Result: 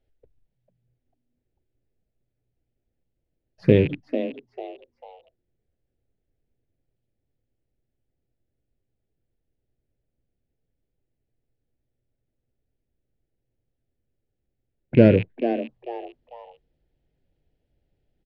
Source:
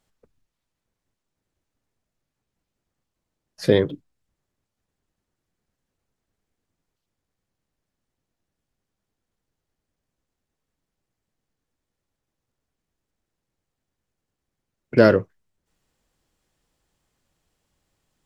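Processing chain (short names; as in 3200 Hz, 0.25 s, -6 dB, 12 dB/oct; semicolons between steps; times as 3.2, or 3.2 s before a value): rattling part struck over -32 dBFS, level -14 dBFS; low shelf 380 Hz +8.5 dB; envelope phaser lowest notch 180 Hz, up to 1200 Hz, full sweep at -27.5 dBFS; in parallel at -9.5 dB: short-mantissa float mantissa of 2-bit; on the sum: air absorption 340 m; on a send: frequency-shifting echo 0.446 s, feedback 32%, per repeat +120 Hz, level -10.5 dB; on the sum: gain -4 dB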